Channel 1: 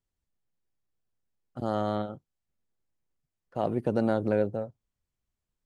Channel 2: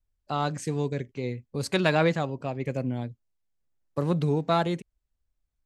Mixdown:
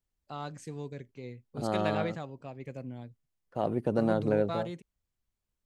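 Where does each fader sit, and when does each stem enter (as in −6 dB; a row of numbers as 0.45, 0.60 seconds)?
−1.5, −11.5 decibels; 0.00, 0.00 seconds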